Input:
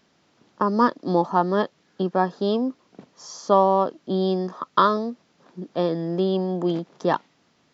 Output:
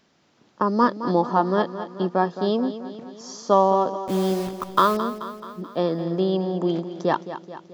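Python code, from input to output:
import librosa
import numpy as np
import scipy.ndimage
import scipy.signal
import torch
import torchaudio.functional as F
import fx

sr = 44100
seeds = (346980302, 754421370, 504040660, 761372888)

p1 = fx.delta_hold(x, sr, step_db=-31.0, at=(4.01, 4.97))
y = p1 + fx.echo_feedback(p1, sr, ms=216, feedback_pct=57, wet_db=-12.0, dry=0)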